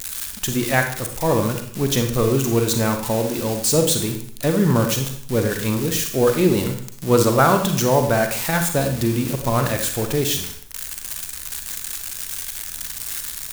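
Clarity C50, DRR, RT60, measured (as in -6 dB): 7.0 dB, 5.0 dB, 0.65 s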